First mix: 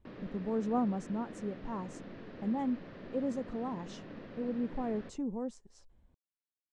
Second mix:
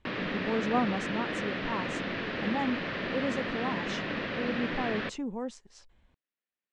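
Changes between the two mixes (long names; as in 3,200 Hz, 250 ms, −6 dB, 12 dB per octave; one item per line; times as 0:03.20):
background +10.0 dB
master: add parametric band 2,600 Hz +14 dB 2.7 octaves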